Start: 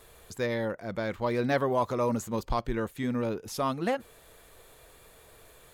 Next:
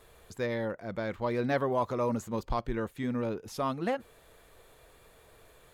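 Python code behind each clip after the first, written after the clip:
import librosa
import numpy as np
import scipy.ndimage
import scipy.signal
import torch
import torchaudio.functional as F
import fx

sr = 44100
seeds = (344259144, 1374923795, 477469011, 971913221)

y = fx.high_shelf(x, sr, hz=4600.0, db=-6.0)
y = y * 10.0 ** (-2.0 / 20.0)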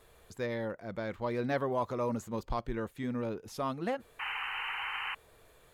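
y = fx.spec_paint(x, sr, seeds[0], shape='noise', start_s=4.19, length_s=0.96, low_hz=750.0, high_hz=3100.0, level_db=-34.0)
y = y * 10.0 ** (-3.0 / 20.0)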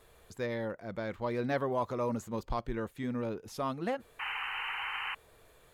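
y = x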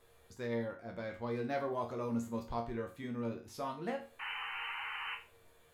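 y = fx.resonator_bank(x, sr, root=39, chord='minor', decay_s=0.34)
y = y * 10.0 ** (7.5 / 20.0)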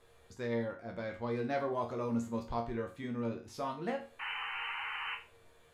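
y = scipy.signal.sosfilt(scipy.signal.bessel(2, 9000.0, 'lowpass', norm='mag', fs=sr, output='sos'), x)
y = y * 10.0 ** (2.0 / 20.0)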